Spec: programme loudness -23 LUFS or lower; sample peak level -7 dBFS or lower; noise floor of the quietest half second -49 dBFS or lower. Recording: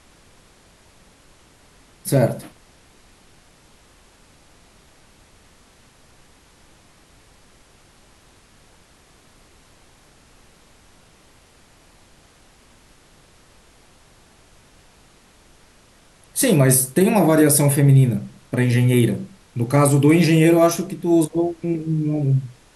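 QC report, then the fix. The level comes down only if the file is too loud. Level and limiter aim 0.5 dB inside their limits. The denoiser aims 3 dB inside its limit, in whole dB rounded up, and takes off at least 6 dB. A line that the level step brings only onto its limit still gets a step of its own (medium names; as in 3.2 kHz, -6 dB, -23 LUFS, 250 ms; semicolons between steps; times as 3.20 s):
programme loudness -17.5 LUFS: fail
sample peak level -5.0 dBFS: fail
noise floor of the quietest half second -52 dBFS: pass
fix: trim -6 dB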